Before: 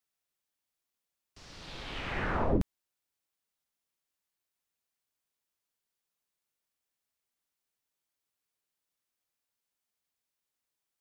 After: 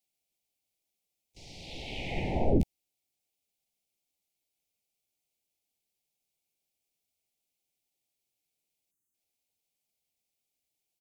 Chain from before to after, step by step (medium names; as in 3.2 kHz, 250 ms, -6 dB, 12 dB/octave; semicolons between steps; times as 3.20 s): harmony voices -3 st -4 dB, +4 st -15 dB; spectral selection erased 8.91–9.14 s, 410–6000 Hz; elliptic band-stop 810–2200 Hz, stop band 50 dB; trim +1.5 dB